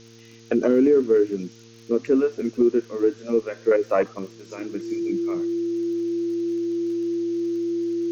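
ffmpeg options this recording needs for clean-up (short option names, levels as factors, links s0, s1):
-af "adeclick=t=4,bandreject=f=114.4:t=h:w=4,bandreject=f=228.8:t=h:w=4,bandreject=f=343.2:t=h:w=4,bandreject=f=457.6:t=h:w=4,bandreject=f=340:w=30,afftdn=nr=19:nf=-47"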